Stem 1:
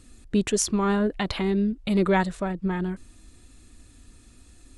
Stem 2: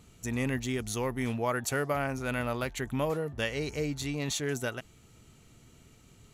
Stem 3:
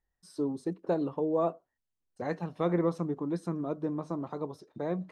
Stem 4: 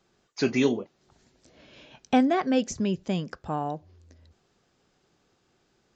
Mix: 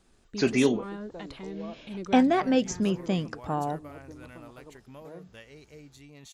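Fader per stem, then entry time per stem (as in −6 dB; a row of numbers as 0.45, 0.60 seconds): −15.5, −17.0, −14.5, +0.5 decibels; 0.00, 1.95, 0.25, 0.00 seconds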